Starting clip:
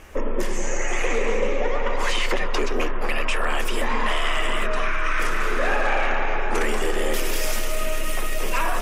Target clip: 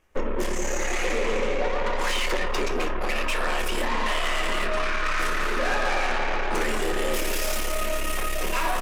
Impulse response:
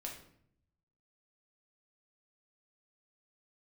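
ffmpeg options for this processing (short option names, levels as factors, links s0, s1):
-filter_complex "[0:a]asplit=2[s0][s1];[s1]adelay=209.9,volume=0.0794,highshelf=f=4000:g=-4.72[s2];[s0][s2]amix=inputs=2:normalize=0,aeval=exprs='0.251*(cos(1*acos(clip(val(0)/0.251,-1,1)))-cos(1*PI/2))+0.0316*(cos(7*acos(clip(val(0)/0.251,-1,1)))-cos(7*PI/2))':c=same,asplit=2[s3][s4];[1:a]atrim=start_sample=2205,atrim=end_sample=3087[s5];[s4][s5]afir=irnorm=-1:irlink=0,volume=1.41[s6];[s3][s6]amix=inputs=2:normalize=0,volume=0.376"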